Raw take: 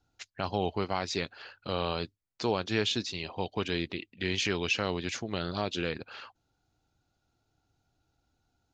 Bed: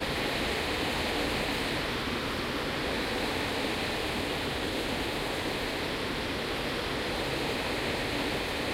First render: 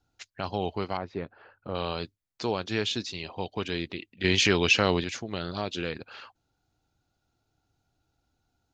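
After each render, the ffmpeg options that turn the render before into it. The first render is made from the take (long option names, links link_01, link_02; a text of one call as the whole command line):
ffmpeg -i in.wav -filter_complex "[0:a]asettb=1/sr,asplit=3[link_01][link_02][link_03];[link_01]atrim=end=0.974[link_04];[link_02]atrim=start=0.97:end=1.75,asetpts=PTS-STARTPTS,afade=type=in:duration=0.004:curve=qsin,afade=type=out:start_time=0.776:duration=0.004:curve=qsin,lowpass=1200[link_05];[link_03]atrim=start=1.746[link_06];[link_04][link_05]acrossfade=duration=0.004:curve1=hsin:curve2=qsin[link_07];[link_07][link_06]acrossfade=duration=0.004:curve1=qsin:curve2=hsin,asplit=3[link_08][link_09][link_10];[link_08]atrim=end=4.242[link_11];[link_09]atrim=start=4.238:end=5.042,asetpts=PTS-STARTPTS,volume=7.5dB[link_12];[link_10]atrim=start=5.038[link_13];[link_11][link_12]acrossfade=duration=0.004:curve1=hsin:curve2=hsin[link_14];[link_14][link_13]acrossfade=duration=0.004:curve1=hsin:curve2=hsin" out.wav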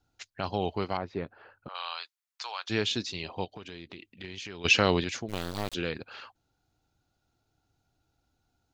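ffmpeg -i in.wav -filter_complex "[0:a]asettb=1/sr,asplit=3[link_01][link_02][link_03];[link_01]atrim=end=1.684[link_04];[link_02]atrim=start=1.68:end=2.7,asetpts=PTS-STARTPTS,afade=type=in:duration=0.004:curve=qsin,afade=type=out:start_time=1.016:duration=0.004:curve=qsin,highpass=frequency=920:width=0.5412,highpass=frequency=920:width=1.3066[link_05];[link_03]atrim=start=2.696[link_06];[link_04][link_05]acrossfade=duration=0.004:curve1=hsin:curve2=qsin[link_07];[link_07][link_06]acrossfade=duration=0.004:curve1=qsin:curve2=hsin,asplit=3[link_08][link_09][link_10];[link_08]afade=type=out:start_time=3.44:duration=0.02[link_11];[link_09]acompressor=threshold=-41dB:ratio=4:attack=3.2:release=140:knee=1:detection=peak,afade=type=in:start_time=3.44:duration=0.02,afade=type=out:start_time=4.64:duration=0.02[link_12];[link_10]afade=type=in:start_time=4.64:duration=0.02[link_13];[link_11][link_12][link_13]amix=inputs=3:normalize=0,asplit=3[link_14][link_15][link_16];[link_14]afade=type=out:start_time=5.28:duration=0.02[link_17];[link_15]acrusher=bits=4:dc=4:mix=0:aa=0.000001,afade=type=in:start_time=5.28:duration=0.02,afade=type=out:start_time=5.73:duration=0.02[link_18];[link_16]afade=type=in:start_time=5.73:duration=0.02[link_19];[link_17][link_18][link_19]amix=inputs=3:normalize=0" out.wav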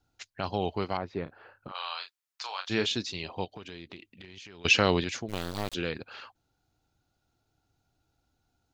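ffmpeg -i in.wav -filter_complex "[0:a]asettb=1/sr,asplit=3[link_01][link_02][link_03];[link_01]atrim=end=1.234[link_04];[link_02]atrim=start=1.23:end=2.86,asetpts=PTS-STARTPTS,afade=type=in:duration=0.004:curve=qsin,afade=type=out:start_time=1.626:duration=0.004:curve=qsin,asplit=2[link_05][link_06];[link_06]adelay=32,volume=-8dB[link_07];[link_05][link_07]amix=inputs=2:normalize=0,atrim=end_sample=71883[link_08];[link_03]atrim=start=2.856[link_09];[link_04][link_08]acrossfade=duration=0.004:curve1=hsin:curve2=qsin[link_10];[link_10][link_09]acrossfade=duration=0.004:curve1=qsin:curve2=hsin,asettb=1/sr,asplit=3[link_11][link_12][link_13];[link_11]atrim=end=3.964[link_14];[link_12]atrim=start=3.96:end=4.65,asetpts=PTS-STARTPTS,afade=type=in:duration=0.004:curve=qsin,afade=type=out:start_time=0.686:duration=0.004:curve=qsin,acompressor=threshold=-43dB:ratio=6:attack=3.2:release=140:knee=1:detection=peak[link_15];[link_13]atrim=start=4.646[link_16];[link_14][link_15]acrossfade=duration=0.004:curve1=hsin:curve2=qsin[link_17];[link_17][link_16]acrossfade=duration=0.004:curve1=qsin:curve2=hsin" out.wav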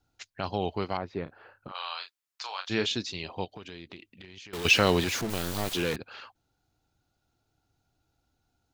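ffmpeg -i in.wav -filter_complex "[0:a]asettb=1/sr,asplit=3[link_01][link_02][link_03];[link_01]atrim=end=4.534[link_04];[link_02]atrim=start=4.53:end=5.96,asetpts=PTS-STARTPTS,afade=type=in:duration=0.004:curve=qsin,afade=type=out:start_time=1.426:duration=0.004:curve=qsin,aeval=exprs='val(0)+0.5*0.0316*sgn(val(0))':channel_layout=same[link_05];[link_03]atrim=start=5.956[link_06];[link_04][link_05]acrossfade=duration=0.004:curve1=hsin:curve2=qsin[link_07];[link_07][link_06]acrossfade=duration=0.004:curve1=qsin:curve2=hsin" out.wav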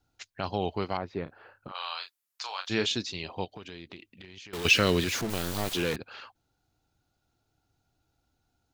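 ffmpeg -i in.wav -filter_complex "[0:a]asettb=1/sr,asplit=3[link_01][link_02][link_03];[link_01]atrim=end=1.814[link_04];[link_02]atrim=start=1.81:end=3.02,asetpts=PTS-STARTPTS,afade=type=in:duration=0.004:curve=qsin,afade=type=out:start_time=1.206:duration=0.004:curve=qsin,equalizer=frequency=13000:width=0.7:gain=9[link_05];[link_03]atrim=start=3.016[link_06];[link_04][link_05]acrossfade=duration=0.004:curve1=hsin:curve2=qsin[link_07];[link_07][link_06]acrossfade=duration=0.004:curve1=qsin:curve2=hsin,asettb=1/sr,asplit=3[link_08][link_09][link_10];[link_08]atrim=end=4.704[link_11];[link_09]atrim=start=4.7:end=5.13,asetpts=PTS-STARTPTS,afade=type=in:duration=0.004:curve=qsin,afade=type=out:start_time=0.426:duration=0.004:curve=qsin,equalizer=frequency=820:width_type=o:width=0.63:gain=-10[link_12];[link_10]atrim=start=5.126[link_13];[link_11][link_12]acrossfade=duration=0.004:curve1=hsin:curve2=qsin[link_14];[link_14][link_13]acrossfade=duration=0.004:curve1=qsin:curve2=hsin" out.wav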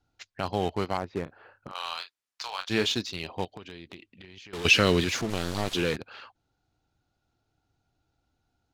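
ffmpeg -i in.wav -filter_complex "[0:a]asplit=2[link_01][link_02];[link_02]acrusher=bits=4:mix=0:aa=0.000001,volume=-11dB[link_03];[link_01][link_03]amix=inputs=2:normalize=0,adynamicsmooth=sensitivity=6.5:basefreq=7500" out.wav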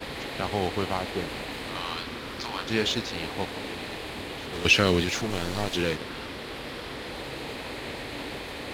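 ffmpeg -i in.wav -i bed.wav -filter_complex "[1:a]volume=-5dB[link_01];[0:a][link_01]amix=inputs=2:normalize=0" out.wav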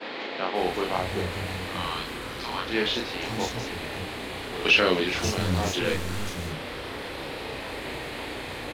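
ffmpeg -i in.wav -filter_complex "[0:a]asplit=2[link_01][link_02];[link_02]adelay=33,volume=-2dB[link_03];[link_01][link_03]amix=inputs=2:normalize=0,acrossover=split=210|5000[link_04][link_05][link_06];[link_06]adelay=540[link_07];[link_04]adelay=590[link_08];[link_08][link_05][link_07]amix=inputs=3:normalize=0" out.wav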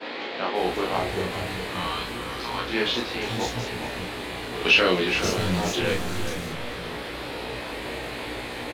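ffmpeg -i in.wav -filter_complex "[0:a]asplit=2[link_01][link_02];[link_02]adelay=17,volume=-4.5dB[link_03];[link_01][link_03]amix=inputs=2:normalize=0,asplit=2[link_04][link_05];[link_05]adelay=414,volume=-9dB,highshelf=frequency=4000:gain=-9.32[link_06];[link_04][link_06]amix=inputs=2:normalize=0" out.wav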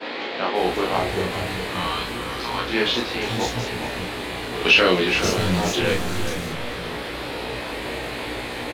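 ffmpeg -i in.wav -af "volume=3.5dB,alimiter=limit=-3dB:level=0:latency=1" out.wav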